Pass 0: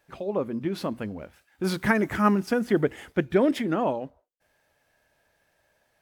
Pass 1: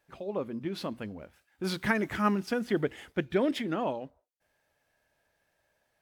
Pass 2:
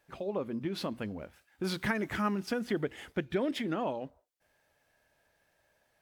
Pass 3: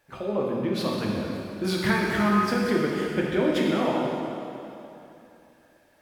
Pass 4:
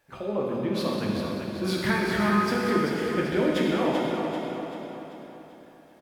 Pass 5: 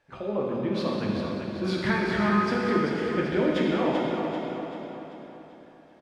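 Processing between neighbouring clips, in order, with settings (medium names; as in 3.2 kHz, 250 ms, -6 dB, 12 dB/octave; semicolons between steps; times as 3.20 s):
dynamic bell 3.5 kHz, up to +6 dB, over -48 dBFS, Q 0.94; trim -6 dB
compression 2:1, threshold -35 dBFS, peak gain reduction 8 dB; trim +2.5 dB
plate-style reverb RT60 2.9 s, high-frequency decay 0.85×, DRR -3.5 dB; trim +4 dB
feedback delay 388 ms, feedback 47%, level -6.5 dB; trim -1.5 dB
distance through air 88 m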